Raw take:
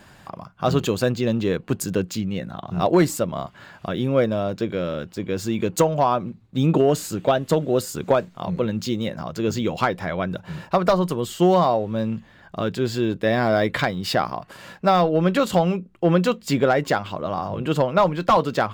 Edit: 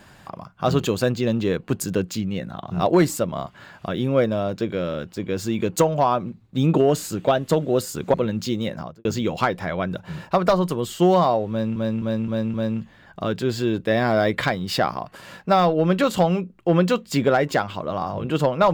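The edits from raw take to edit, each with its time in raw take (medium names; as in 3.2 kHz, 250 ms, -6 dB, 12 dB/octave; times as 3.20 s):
8.14–8.54 s: delete
9.16–9.45 s: studio fade out
11.90–12.16 s: loop, 5 plays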